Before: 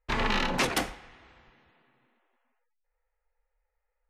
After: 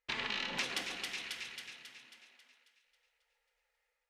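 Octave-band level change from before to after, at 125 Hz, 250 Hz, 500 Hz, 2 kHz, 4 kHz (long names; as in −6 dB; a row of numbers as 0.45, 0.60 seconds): −18.0, −15.5, −14.5, −6.0, −3.0 decibels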